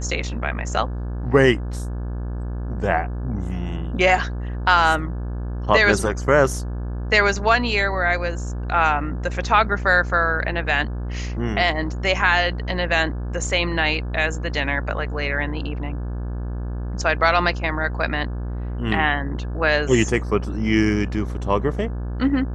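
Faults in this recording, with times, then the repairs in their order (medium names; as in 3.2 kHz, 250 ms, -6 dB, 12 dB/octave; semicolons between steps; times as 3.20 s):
buzz 60 Hz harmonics 29 -27 dBFS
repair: de-hum 60 Hz, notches 29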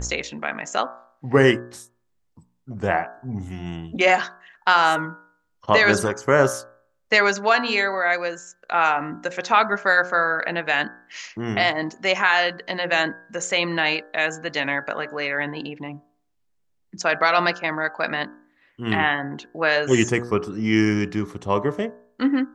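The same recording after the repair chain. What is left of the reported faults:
nothing left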